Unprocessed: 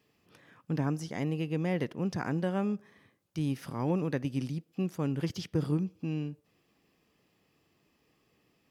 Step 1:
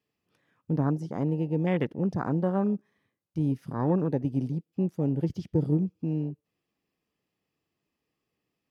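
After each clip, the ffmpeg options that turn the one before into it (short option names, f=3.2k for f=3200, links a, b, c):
-af "afwtdn=0.0141,volume=4.5dB"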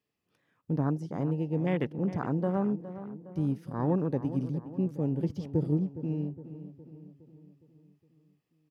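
-filter_complex "[0:a]asplit=2[a][b];[b]adelay=413,lowpass=f=2.6k:p=1,volume=-13dB,asplit=2[c][d];[d]adelay=413,lowpass=f=2.6k:p=1,volume=0.54,asplit=2[e][f];[f]adelay=413,lowpass=f=2.6k:p=1,volume=0.54,asplit=2[g][h];[h]adelay=413,lowpass=f=2.6k:p=1,volume=0.54,asplit=2[i][j];[j]adelay=413,lowpass=f=2.6k:p=1,volume=0.54,asplit=2[k][l];[l]adelay=413,lowpass=f=2.6k:p=1,volume=0.54[m];[a][c][e][g][i][k][m]amix=inputs=7:normalize=0,volume=-2.5dB"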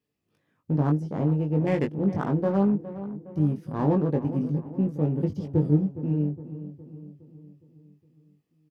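-filter_complex "[0:a]asplit=2[a][b];[b]adynamicsmooth=sensitivity=6.5:basefreq=720,volume=-0.5dB[c];[a][c]amix=inputs=2:normalize=0,asplit=2[d][e];[e]adelay=20,volume=-4dB[f];[d][f]amix=inputs=2:normalize=0,volume=-2dB"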